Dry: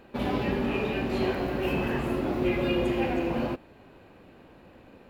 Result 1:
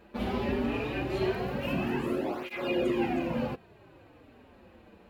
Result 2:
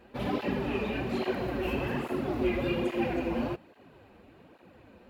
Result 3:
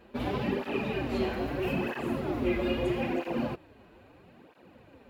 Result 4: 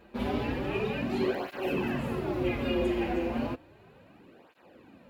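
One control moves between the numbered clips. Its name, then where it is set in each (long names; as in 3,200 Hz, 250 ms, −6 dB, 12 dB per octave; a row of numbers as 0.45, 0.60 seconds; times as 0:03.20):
through-zero flanger with one copy inverted, nulls at: 0.2, 1.2, 0.77, 0.33 Hertz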